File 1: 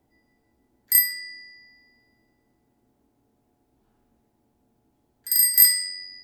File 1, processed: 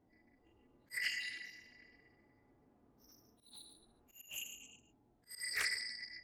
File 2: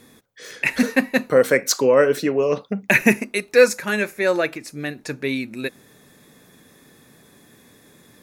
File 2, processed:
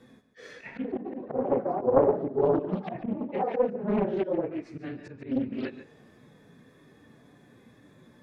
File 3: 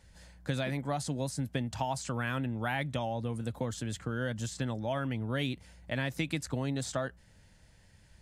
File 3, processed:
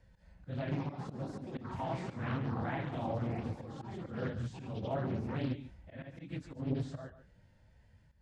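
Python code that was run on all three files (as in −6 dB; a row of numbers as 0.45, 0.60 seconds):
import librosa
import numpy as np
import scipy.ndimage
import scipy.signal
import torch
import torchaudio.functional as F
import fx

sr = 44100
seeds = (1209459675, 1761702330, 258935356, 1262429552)

y = fx.phase_scramble(x, sr, seeds[0], window_ms=50)
y = fx.echo_pitch(y, sr, ms=374, semitones=6, count=3, db_per_echo=-6.0)
y = fx.lowpass(y, sr, hz=1400.0, slope=6)
y = fx.env_lowpass_down(y, sr, base_hz=550.0, full_db=-17.5)
y = fx.auto_swell(y, sr, attack_ms=173.0)
y = y + 10.0 ** (-13.5 / 20.0) * np.pad(y, (int(144 * sr / 1000.0), 0))[:len(y)]
y = fx.hpss(y, sr, part='percussive', gain_db=-9)
y = fx.doppler_dist(y, sr, depth_ms=0.6)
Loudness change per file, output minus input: −22.5, −9.0, −4.0 LU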